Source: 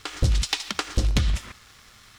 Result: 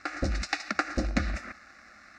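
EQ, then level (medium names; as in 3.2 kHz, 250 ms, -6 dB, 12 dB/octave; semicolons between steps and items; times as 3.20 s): high-pass 240 Hz 6 dB/octave; distance through air 180 m; static phaser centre 650 Hz, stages 8; +6.0 dB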